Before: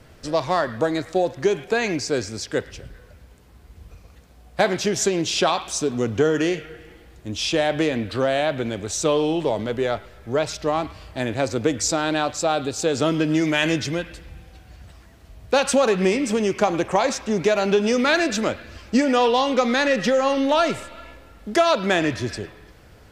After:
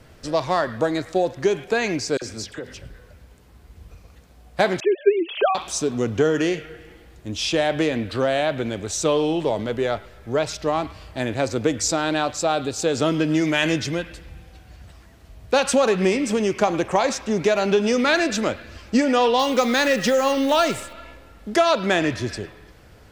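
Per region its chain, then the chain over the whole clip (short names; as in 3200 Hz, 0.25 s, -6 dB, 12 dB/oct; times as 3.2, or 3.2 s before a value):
2.17–2.82 notches 50/100/150/200/250 Hz + compressor 12:1, threshold -27 dBFS + dispersion lows, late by 49 ms, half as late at 1800 Hz
4.8–5.55 sine-wave speech + comb 5.1 ms, depth 30%
19.39–20.93 block floating point 7-bit + high shelf 6500 Hz +10 dB
whole clip: dry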